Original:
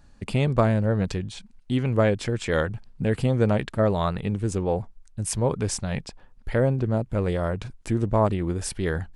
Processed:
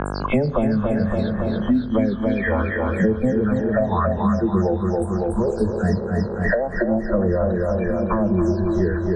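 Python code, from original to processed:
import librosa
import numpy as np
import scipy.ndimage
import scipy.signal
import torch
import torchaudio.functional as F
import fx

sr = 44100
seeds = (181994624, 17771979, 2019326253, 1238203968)

p1 = fx.spec_delay(x, sr, highs='early', ms=227)
p2 = fx.noise_reduce_blind(p1, sr, reduce_db=29)
p3 = fx.env_lowpass_down(p2, sr, base_hz=1700.0, full_db=-24.5)
p4 = scipy.signal.sosfilt(scipy.signal.butter(2, 5900.0, 'lowpass', fs=sr, output='sos'), p3)
p5 = fx.over_compress(p4, sr, threshold_db=-26.0, ratio=-1.0)
p6 = p4 + (p5 * 10.0 ** (2.0 / 20.0))
p7 = fx.rev_spring(p6, sr, rt60_s=2.3, pass_ms=(32,), chirp_ms=35, drr_db=12.0)
p8 = fx.phaser_stages(p7, sr, stages=6, low_hz=310.0, high_hz=3400.0, hz=0.73, feedback_pct=45)
p9 = p8 + fx.echo_feedback(p8, sr, ms=280, feedback_pct=55, wet_db=-5.5, dry=0)
p10 = fx.dmg_buzz(p9, sr, base_hz=50.0, harmonics=33, level_db=-46.0, tilt_db=-4, odd_only=False)
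y = fx.band_squash(p10, sr, depth_pct=100)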